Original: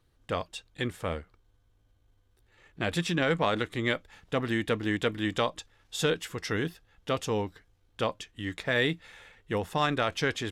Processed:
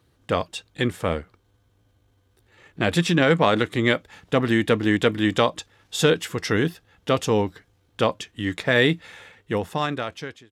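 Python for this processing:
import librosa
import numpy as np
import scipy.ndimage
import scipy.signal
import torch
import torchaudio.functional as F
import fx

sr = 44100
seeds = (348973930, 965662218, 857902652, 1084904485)

y = fx.fade_out_tail(x, sr, length_s=1.38)
y = scipy.signal.sosfilt(scipy.signal.butter(2, 75.0, 'highpass', fs=sr, output='sos'), y)
y = fx.peak_eq(y, sr, hz=220.0, db=2.5, octaves=3.0)
y = y * librosa.db_to_amplitude(7.0)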